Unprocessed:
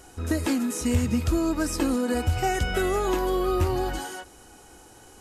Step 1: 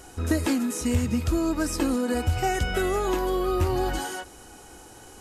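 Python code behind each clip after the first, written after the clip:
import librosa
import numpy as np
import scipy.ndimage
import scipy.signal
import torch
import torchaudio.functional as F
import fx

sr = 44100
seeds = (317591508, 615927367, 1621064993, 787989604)

y = fx.rider(x, sr, range_db=10, speed_s=0.5)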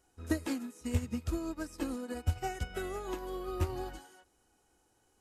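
y = fx.upward_expand(x, sr, threshold_db=-32.0, expansion=2.5)
y = y * librosa.db_to_amplitude(-5.0)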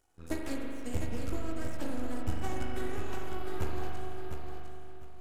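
y = np.maximum(x, 0.0)
y = fx.echo_feedback(y, sr, ms=705, feedback_pct=24, wet_db=-7.0)
y = fx.rev_spring(y, sr, rt60_s=2.8, pass_ms=(40,), chirp_ms=50, drr_db=-0.5)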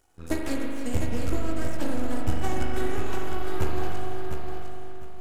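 y = x + 10.0 ** (-12.5 / 20.0) * np.pad(x, (int(299 * sr / 1000.0), 0))[:len(x)]
y = y * librosa.db_to_amplitude(7.0)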